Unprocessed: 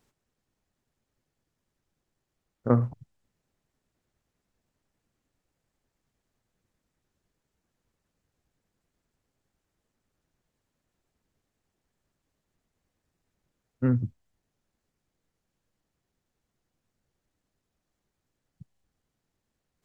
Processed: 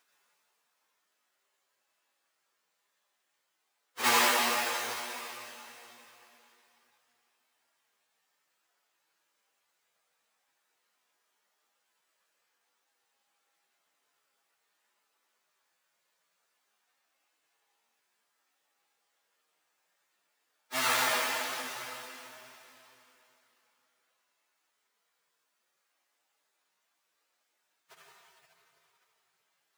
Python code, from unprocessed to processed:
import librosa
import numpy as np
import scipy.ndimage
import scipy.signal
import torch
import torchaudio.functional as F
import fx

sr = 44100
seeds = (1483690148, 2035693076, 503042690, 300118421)

y = fx.halfwave_hold(x, sr)
y = scipy.signal.sosfilt(scipy.signal.butter(2, 1000.0, 'highpass', fs=sr, output='sos'), y)
y = fx.quant_float(y, sr, bits=8)
y = fx.rev_schroeder(y, sr, rt60_s=2.2, comb_ms=38, drr_db=-6.0)
y = fx.stretch_vocoder_free(y, sr, factor=1.5)
y = y + 10.0 ** (-23.0 / 20.0) * np.pad(y, (int(849 * sr / 1000.0), 0))[:len(y)]
y = y * 10.0 ** (1.0 / 20.0)